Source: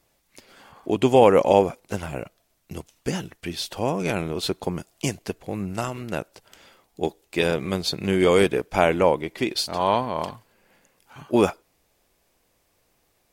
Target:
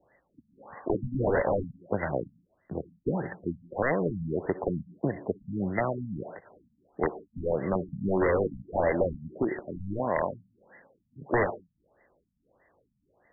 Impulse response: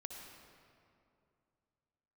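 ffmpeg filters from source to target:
-filter_complex "[0:a]highpass=f=99:p=1,aeval=exprs='(mod(4.47*val(0)+1,2)-1)/4.47':c=same,equalizer=f=560:t=o:w=0.53:g=4,acrossover=split=130|1000[a][b][c];[a]acompressor=threshold=-37dB:ratio=4[d];[b]acompressor=threshold=-26dB:ratio=4[e];[c]acompressor=threshold=-37dB:ratio=4[f];[d][e][f]amix=inputs=3:normalize=0,aexciter=amount=7.3:drive=8.1:freq=2.1k,asplit=2[g][h];[h]aemphasis=mode=production:type=riaa[i];[1:a]atrim=start_sample=2205,afade=t=out:st=0.23:d=0.01,atrim=end_sample=10584[j];[i][j]afir=irnorm=-1:irlink=0,volume=1.5dB[k];[g][k]amix=inputs=2:normalize=0,afftfilt=real='re*lt(b*sr/1024,240*pow(2100/240,0.5+0.5*sin(2*PI*1.6*pts/sr)))':imag='im*lt(b*sr/1024,240*pow(2100/240,0.5+0.5*sin(2*PI*1.6*pts/sr)))':win_size=1024:overlap=0.75"

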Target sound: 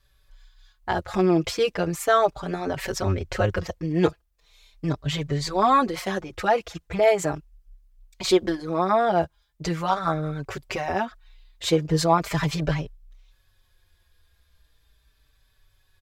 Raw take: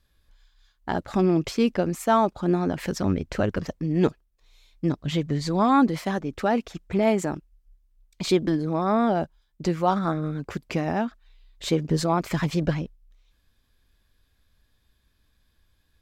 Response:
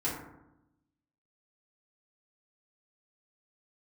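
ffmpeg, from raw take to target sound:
-filter_complex "[0:a]equalizer=f=230:w=1.8:g=-14,asplit=2[a][b];[b]adelay=4.7,afreqshift=-0.39[c];[a][c]amix=inputs=2:normalize=1,volume=7dB"

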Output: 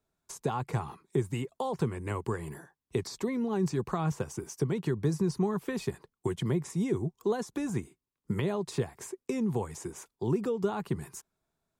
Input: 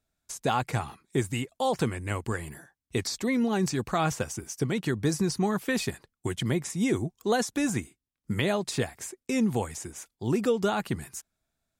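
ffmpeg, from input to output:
-filter_complex "[0:a]acrossover=split=180[a][b];[b]acompressor=threshold=-35dB:ratio=3[c];[a][c]amix=inputs=2:normalize=0,equalizer=f=160:t=o:w=0.67:g=7,equalizer=f=400:t=o:w=0.67:g=11,equalizer=f=1k:t=o:w=0.67:g=10,volume=-4.5dB"

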